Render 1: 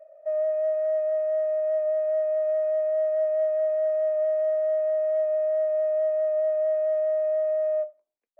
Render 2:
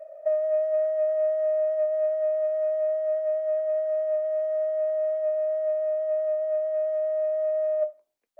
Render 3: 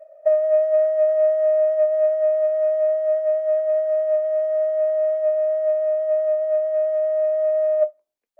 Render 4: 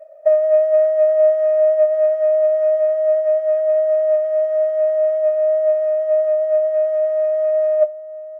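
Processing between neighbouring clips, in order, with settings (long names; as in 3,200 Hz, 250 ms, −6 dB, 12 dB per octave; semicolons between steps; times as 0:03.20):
compressor whose output falls as the input rises −27 dBFS, ratio −0.5; level +3 dB
expander for the loud parts 1.5 to 1, over −45 dBFS; level +7.5 dB
slap from a distant wall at 160 metres, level −15 dB; level +3.5 dB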